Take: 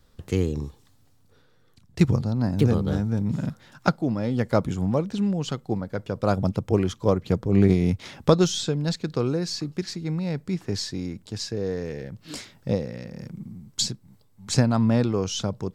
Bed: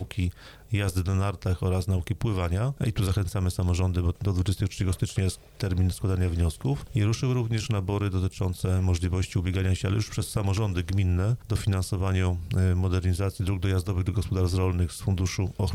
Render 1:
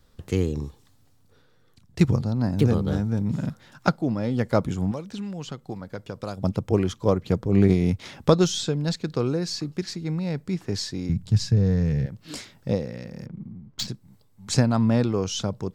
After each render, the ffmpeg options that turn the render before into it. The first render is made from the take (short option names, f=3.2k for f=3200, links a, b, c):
-filter_complex "[0:a]asettb=1/sr,asplit=3[a][b][c];[a]atrim=end=4.914[d];[b]atrim=start=4.91:end=6.44,asetpts=PTS-STARTPTS,afade=t=in:d=0.004:c=qsin,afade=t=out:st=1.526:d=0.004:c=qsin,acrossover=split=960|2900[e][f][g];[e]acompressor=threshold=-32dB:ratio=4[h];[f]acompressor=threshold=-44dB:ratio=4[i];[g]acompressor=threshold=-44dB:ratio=4[j];[h][i][j]amix=inputs=3:normalize=0[k];[c]atrim=start=6.436[l];[d][k]acrossfade=d=0.004:c1=hsin:c2=qsin[m];[m][l]acrossfade=d=0.004:c1=qsin:c2=hsin,asettb=1/sr,asplit=3[n][o][p];[n]atrim=end=11.094[q];[o]atrim=start=11.09:end=12.06,asetpts=PTS-STARTPTS,afade=t=in:d=0.004:c=qsin,afade=t=out:st=0.966:d=0.004:c=qsin,lowshelf=f=220:t=q:w=1.5:g=13.5[r];[p]atrim=start=12.056[s];[q][r]acrossfade=d=0.004:c1=hsin:c2=qsin[t];[t][s]acrossfade=d=0.004:c1=qsin:c2=hsin,asplit=3[u][v][w];[u]afade=t=out:st=13.25:d=0.02[x];[v]adynamicsmooth=sensitivity=1.5:basefreq=2.1k,afade=t=in:st=13.25:d=0.02,afade=t=out:st=13.87:d=0.02[y];[w]afade=t=in:st=13.87:d=0.02[z];[x][y][z]amix=inputs=3:normalize=0"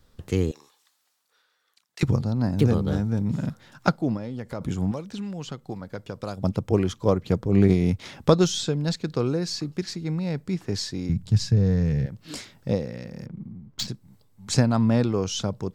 -filter_complex "[0:a]asettb=1/sr,asplit=3[a][b][c];[a]atrim=end=0.514[d];[b]atrim=start=0.51:end=2.03,asetpts=PTS-STARTPTS,afade=t=in:d=0.004:c=qsin,afade=t=out:st=1.516:d=0.004:c=qsin,highpass=1.1k[e];[c]atrim=start=2.026[f];[d][e]acrossfade=d=0.004:c1=hsin:c2=qsin[g];[g][f]acrossfade=d=0.004:c1=qsin:c2=hsin,asplit=3[h][i][j];[h]afade=t=out:st=4.16:d=0.02[k];[i]acompressor=threshold=-32dB:ratio=3:attack=3.2:release=140:knee=1:detection=peak,afade=t=in:st=4.16:d=0.02,afade=t=out:st=4.6:d=0.02[l];[j]afade=t=in:st=4.6:d=0.02[m];[k][l][m]amix=inputs=3:normalize=0"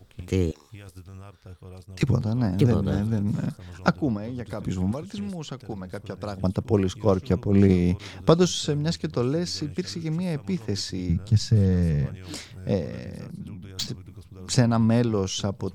-filter_complex "[1:a]volume=-17.5dB[a];[0:a][a]amix=inputs=2:normalize=0"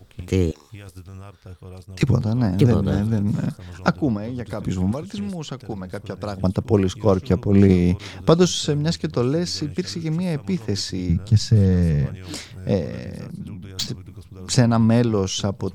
-af "volume=4dB,alimiter=limit=-3dB:level=0:latency=1"